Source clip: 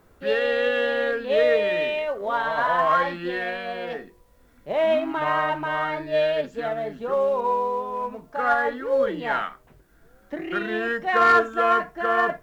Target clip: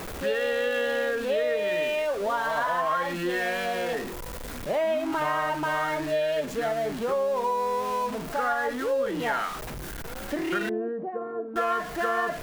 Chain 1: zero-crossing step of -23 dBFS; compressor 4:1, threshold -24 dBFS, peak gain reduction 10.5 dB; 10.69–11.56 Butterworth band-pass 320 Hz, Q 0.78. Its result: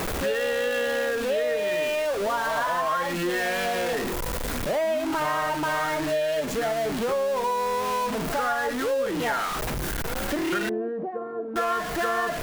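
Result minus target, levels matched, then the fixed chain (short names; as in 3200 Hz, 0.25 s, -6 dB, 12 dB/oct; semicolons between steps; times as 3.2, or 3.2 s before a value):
zero-crossing step: distortion +6 dB
zero-crossing step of -31 dBFS; compressor 4:1, threshold -24 dBFS, peak gain reduction 10 dB; 10.69–11.56 Butterworth band-pass 320 Hz, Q 0.78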